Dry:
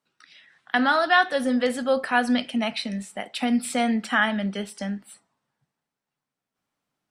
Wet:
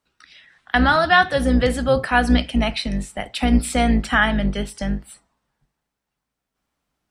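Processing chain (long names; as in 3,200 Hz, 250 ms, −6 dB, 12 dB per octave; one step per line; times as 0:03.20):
sub-octave generator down 2 octaves, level 0 dB
level +4 dB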